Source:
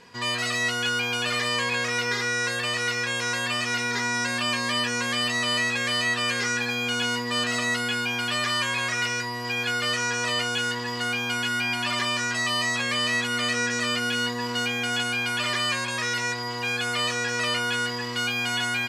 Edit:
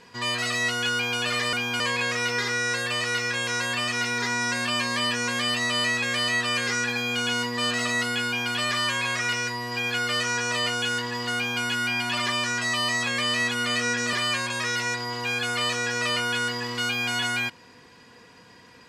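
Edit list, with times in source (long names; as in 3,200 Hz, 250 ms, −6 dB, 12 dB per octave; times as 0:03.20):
0:11.09–0:11.36: duplicate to 0:01.53
0:13.86–0:15.51: remove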